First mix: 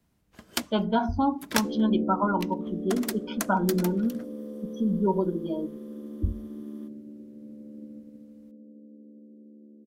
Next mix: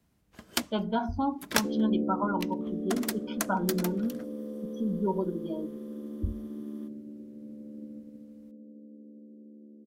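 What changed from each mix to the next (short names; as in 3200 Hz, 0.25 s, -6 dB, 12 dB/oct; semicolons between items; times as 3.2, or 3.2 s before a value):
speech -4.5 dB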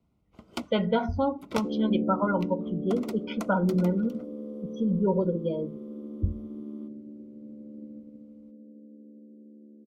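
speech: remove fixed phaser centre 510 Hz, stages 6; first sound: add LPF 1300 Hz 6 dB/oct; master: add Butterworth band-stop 1700 Hz, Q 3.3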